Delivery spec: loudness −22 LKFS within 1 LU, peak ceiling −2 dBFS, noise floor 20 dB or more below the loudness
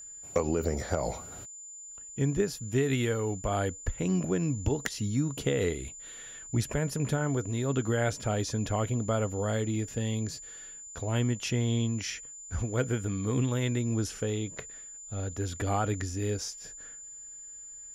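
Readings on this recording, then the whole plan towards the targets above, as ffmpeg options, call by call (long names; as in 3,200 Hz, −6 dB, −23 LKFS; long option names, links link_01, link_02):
interfering tone 7,100 Hz; level of the tone −43 dBFS; integrated loudness −31.0 LKFS; sample peak −14.5 dBFS; target loudness −22.0 LKFS
→ -af "bandreject=frequency=7100:width=30"
-af "volume=9dB"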